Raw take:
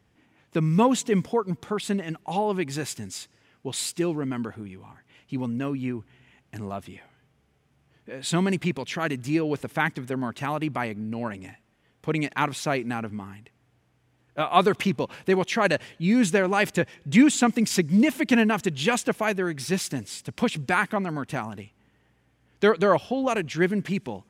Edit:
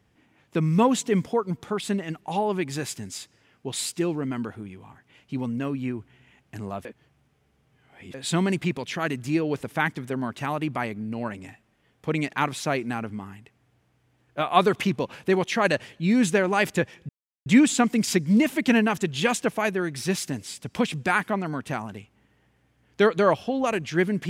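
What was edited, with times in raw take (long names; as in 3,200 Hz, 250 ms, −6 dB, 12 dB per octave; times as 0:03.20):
0:06.85–0:08.14: reverse
0:17.09: splice in silence 0.37 s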